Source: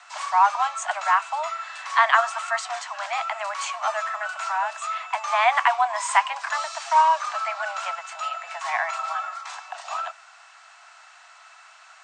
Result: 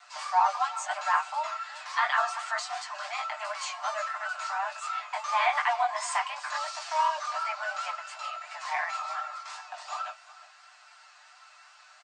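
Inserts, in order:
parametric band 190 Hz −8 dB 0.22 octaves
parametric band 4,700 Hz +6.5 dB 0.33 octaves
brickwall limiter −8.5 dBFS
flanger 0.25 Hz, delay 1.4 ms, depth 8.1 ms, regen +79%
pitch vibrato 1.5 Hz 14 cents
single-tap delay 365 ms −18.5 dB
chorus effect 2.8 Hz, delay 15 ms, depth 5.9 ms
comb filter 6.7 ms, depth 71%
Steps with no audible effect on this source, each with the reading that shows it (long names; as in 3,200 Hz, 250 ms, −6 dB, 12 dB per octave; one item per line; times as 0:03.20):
parametric band 190 Hz: nothing at its input below 540 Hz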